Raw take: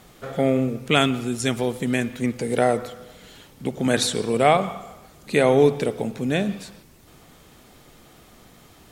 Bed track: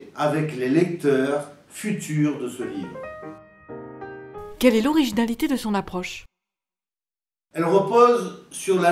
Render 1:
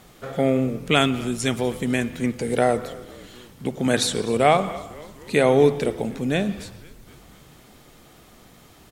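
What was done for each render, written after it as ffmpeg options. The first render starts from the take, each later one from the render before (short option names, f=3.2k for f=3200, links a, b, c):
-filter_complex "[0:a]asplit=6[a][b][c][d][e][f];[b]adelay=251,afreqshift=-85,volume=-21dB[g];[c]adelay=502,afreqshift=-170,volume=-25dB[h];[d]adelay=753,afreqshift=-255,volume=-29dB[i];[e]adelay=1004,afreqshift=-340,volume=-33dB[j];[f]adelay=1255,afreqshift=-425,volume=-37.1dB[k];[a][g][h][i][j][k]amix=inputs=6:normalize=0"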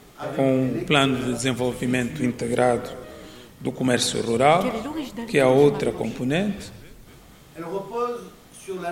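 -filter_complex "[1:a]volume=-11.5dB[a];[0:a][a]amix=inputs=2:normalize=0"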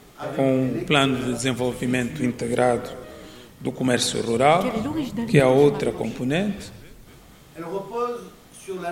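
-filter_complex "[0:a]asettb=1/sr,asplit=3[a][b][c];[a]atrim=end=4.764[d];[b]atrim=start=4.76:end=5.4,asetpts=PTS-STARTPTS,afade=t=in:d=0.004:c=qsin,afade=t=out:st=0.636:d=0.004:c=qsin,equalizer=f=130:t=o:w=1.5:g=13.5[e];[c]atrim=start=5.396[f];[d][e]acrossfade=d=0.004:c1=hsin:c2=qsin[g];[g][f]acrossfade=d=0.004:c1=qsin:c2=hsin"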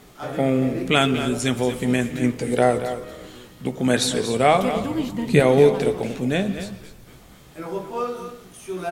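-filter_complex "[0:a]asplit=2[a][b];[b]adelay=16,volume=-10.5dB[c];[a][c]amix=inputs=2:normalize=0,aecho=1:1:232:0.282"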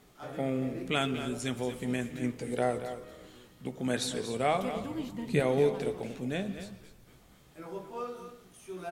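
-af "volume=-11.5dB"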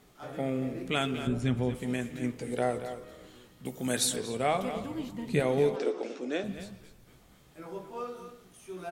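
-filter_complex "[0:a]asettb=1/sr,asplit=3[a][b][c];[a]atrim=end=1.274[d];[b]atrim=start=1.27:end=1.75,asetpts=PTS-STARTPTS,afade=t=in:d=0.004:c=qsin,afade=t=out:st=0.476:d=0.004:c=qsin,bass=f=250:g=11,treble=f=4k:g=-11[e];[c]atrim=start=1.746[f];[d][e]acrossfade=d=0.004:c1=hsin:c2=qsin[g];[g][f]acrossfade=d=0.004:c1=qsin:c2=hsin,asettb=1/sr,asplit=3[h][i][j];[h]atrim=end=3.654[k];[i]atrim=start=3.65:end=4.16,asetpts=PTS-STARTPTS,afade=t=in:d=0.004:c=qsin,afade=t=out:st=0.506:d=0.004:c=qsin,aemphasis=mode=production:type=50fm[l];[j]atrim=start=4.156[m];[k][l]acrossfade=d=0.004:c1=hsin:c2=qsin[n];[n][m]acrossfade=d=0.004:c1=qsin:c2=hsin,asettb=1/sr,asplit=3[o][p][q];[o]atrim=end=5.764[r];[p]atrim=start=5.76:end=6.44,asetpts=PTS-STARTPTS,afade=t=in:d=0.004:c=qsin,afade=t=out:st=0.676:d=0.004:c=qsin,highpass=f=270:w=0.5412,highpass=f=270:w=1.3066,equalizer=f=330:t=q:w=4:g=8,equalizer=f=510:t=q:w=4:g=4,equalizer=f=1.3k:t=q:w=4:g=7,equalizer=f=5.4k:t=q:w=4:g=7,lowpass=f=7.6k:w=0.5412,lowpass=f=7.6k:w=1.3066[s];[q]atrim=start=6.436[t];[r][s]acrossfade=d=0.004:c1=hsin:c2=qsin[u];[u][t]acrossfade=d=0.004:c1=qsin:c2=hsin"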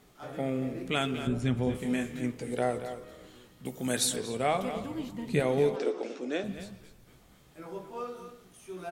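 -filter_complex "[0:a]asettb=1/sr,asplit=3[a][b][c];[a]atrim=end=1.644[d];[b]atrim=start=1.64:end=2.21,asetpts=PTS-STARTPTS,afade=t=in:d=0.004:c=qsin,afade=t=out:st=0.566:d=0.004:c=qsin,asplit=2[e][f];[f]adelay=28,volume=-4.5dB[g];[e][g]amix=inputs=2:normalize=0,atrim=end_sample=25137[h];[c]atrim=start=2.206[i];[d][h]acrossfade=d=0.004:c1=hsin:c2=qsin[j];[j][i]acrossfade=d=0.004:c1=qsin:c2=hsin"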